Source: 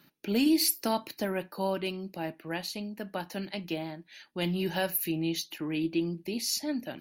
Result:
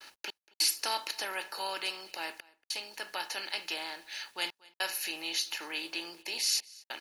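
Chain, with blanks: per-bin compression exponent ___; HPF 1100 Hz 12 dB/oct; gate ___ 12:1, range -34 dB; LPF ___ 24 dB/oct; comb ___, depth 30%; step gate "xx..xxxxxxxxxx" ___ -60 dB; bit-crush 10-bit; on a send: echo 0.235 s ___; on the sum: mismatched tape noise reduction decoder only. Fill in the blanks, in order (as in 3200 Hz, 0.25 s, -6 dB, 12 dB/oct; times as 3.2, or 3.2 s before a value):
0.6, -53 dBFS, 9900 Hz, 2.3 ms, 100 bpm, -23 dB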